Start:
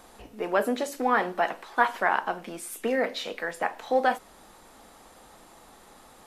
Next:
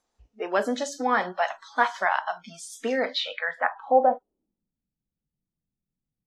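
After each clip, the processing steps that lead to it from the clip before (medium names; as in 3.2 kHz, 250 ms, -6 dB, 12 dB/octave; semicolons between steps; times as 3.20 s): spectral noise reduction 27 dB; low-pass sweep 6.2 kHz -> 150 Hz, 3.00–4.76 s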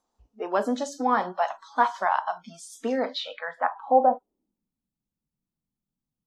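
graphic EQ 250/1000/2000 Hz +5/+7/-7 dB; trim -3 dB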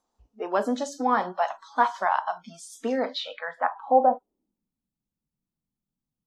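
no audible change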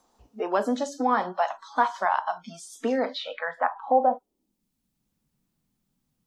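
three bands compressed up and down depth 40%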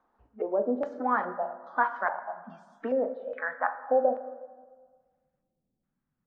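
LFO low-pass square 1.2 Hz 530–1600 Hz; reverberation RT60 1.6 s, pre-delay 8 ms, DRR 11 dB; trim -7 dB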